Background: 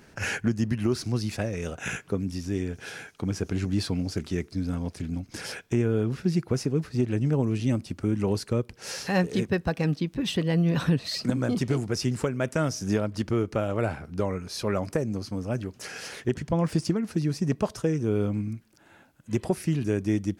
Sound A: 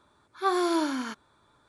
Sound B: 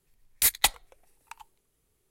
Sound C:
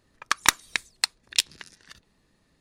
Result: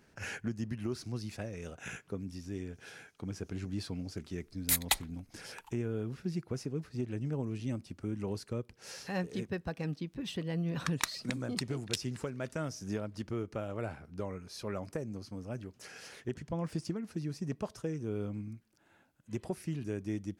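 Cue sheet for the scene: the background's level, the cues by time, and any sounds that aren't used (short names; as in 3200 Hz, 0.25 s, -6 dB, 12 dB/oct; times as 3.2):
background -11 dB
4.27 add B -6.5 dB
10.55 add C -14 dB
not used: A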